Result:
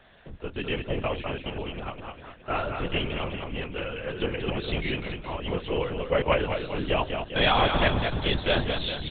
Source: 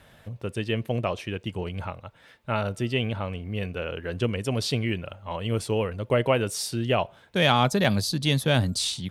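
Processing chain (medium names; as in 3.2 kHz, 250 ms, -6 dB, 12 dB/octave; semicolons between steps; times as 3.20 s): bass shelf 340 Hz -5.5 dB; feedback delay 206 ms, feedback 53%, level -6 dB; LPC vocoder at 8 kHz whisper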